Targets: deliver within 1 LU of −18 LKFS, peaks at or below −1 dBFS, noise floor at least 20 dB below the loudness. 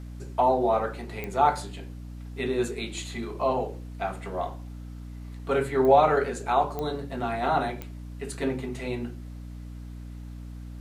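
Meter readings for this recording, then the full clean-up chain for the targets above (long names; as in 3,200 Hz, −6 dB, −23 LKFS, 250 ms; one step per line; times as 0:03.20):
number of clicks 4; mains hum 60 Hz; hum harmonics up to 300 Hz; level of the hum −37 dBFS; integrated loudness −27.0 LKFS; sample peak −7.0 dBFS; target loudness −18.0 LKFS
→ click removal
mains-hum notches 60/120/180/240/300 Hz
level +9 dB
brickwall limiter −1 dBFS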